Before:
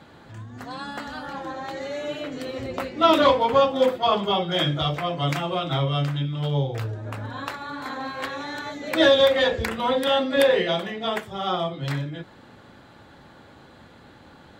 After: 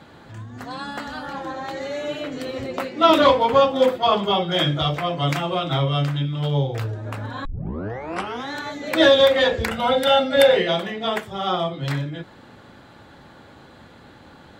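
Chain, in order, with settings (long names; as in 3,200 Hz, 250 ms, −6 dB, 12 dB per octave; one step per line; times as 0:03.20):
0:02.64–0:03.10: high-pass filter 150 Hz 12 dB per octave
0:07.45: tape start 1.07 s
0:09.71–0:10.57: comb filter 1.4 ms, depth 69%
level +2.5 dB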